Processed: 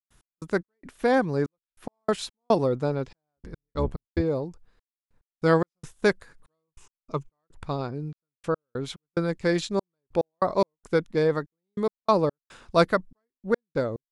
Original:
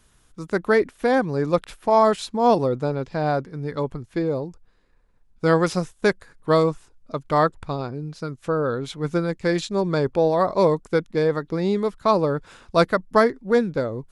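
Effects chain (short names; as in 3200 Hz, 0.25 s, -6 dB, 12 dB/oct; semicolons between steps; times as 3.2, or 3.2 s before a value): 3.36–4.21 octaver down 2 oct, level +2 dB; 6.67–7.33 ripple EQ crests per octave 0.73, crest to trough 8 dB; step gate ".x..xx..xxxxxx.." 144 bpm -60 dB; gain -2 dB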